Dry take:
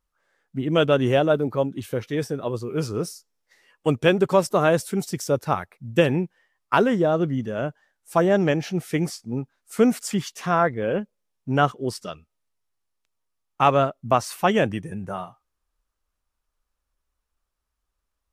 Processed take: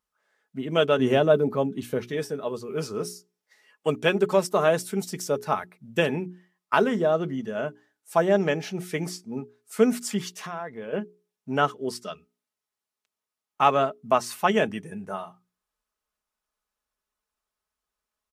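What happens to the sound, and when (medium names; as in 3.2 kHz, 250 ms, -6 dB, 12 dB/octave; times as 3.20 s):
0.99–2.12 s: bass shelf 340 Hz +8 dB
10.30–10.93 s: compression 4:1, threshold -29 dBFS
whole clip: high-pass 230 Hz 6 dB/octave; hum notches 60/120/180/240/300/360/420 Hz; comb 4.7 ms, depth 41%; trim -2 dB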